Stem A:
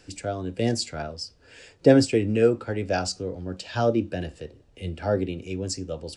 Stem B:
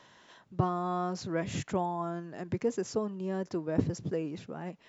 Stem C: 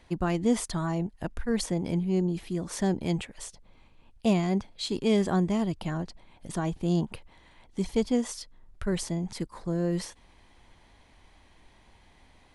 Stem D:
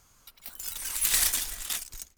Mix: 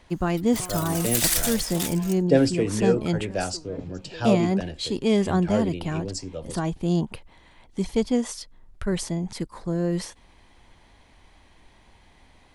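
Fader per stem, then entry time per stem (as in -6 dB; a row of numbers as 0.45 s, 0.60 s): -2.5 dB, -9.5 dB, +3.0 dB, +1.5 dB; 0.45 s, 0.00 s, 0.00 s, 0.10 s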